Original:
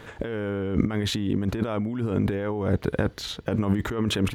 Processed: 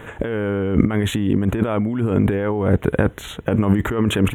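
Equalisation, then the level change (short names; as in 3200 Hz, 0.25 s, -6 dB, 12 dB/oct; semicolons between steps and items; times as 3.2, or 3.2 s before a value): Butterworth band-stop 4800 Hz, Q 1.2; +7.0 dB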